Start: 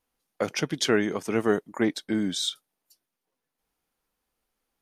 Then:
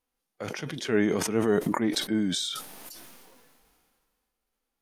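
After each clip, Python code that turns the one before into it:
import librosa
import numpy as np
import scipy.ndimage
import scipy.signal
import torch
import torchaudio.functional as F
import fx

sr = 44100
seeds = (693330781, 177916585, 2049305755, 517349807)

y = fx.hpss(x, sr, part='percussive', gain_db=-11)
y = fx.sustainer(y, sr, db_per_s=27.0)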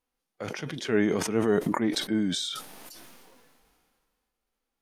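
y = fx.high_shelf(x, sr, hz=8600.0, db=-5.5)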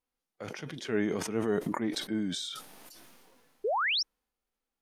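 y = fx.spec_paint(x, sr, seeds[0], shape='rise', start_s=3.64, length_s=0.39, low_hz=380.0, high_hz=5900.0, level_db=-23.0)
y = y * librosa.db_to_amplitude(-5.5)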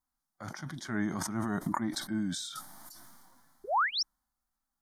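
y = fx.fixed_phaser(x, sr, hz=1100.0, stages=4)
y = y * librosa.db_to_amplitude(3.5)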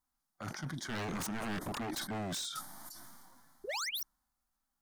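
y = 10.0 ** (-33.5 / 20.0) * (np.abs((x / 10.0 ** (-33.5 / 20.0) + 3.0) % 4.0 - 2.0) - 1.0)
y = y * librosa.db_to_amplitude(1.0)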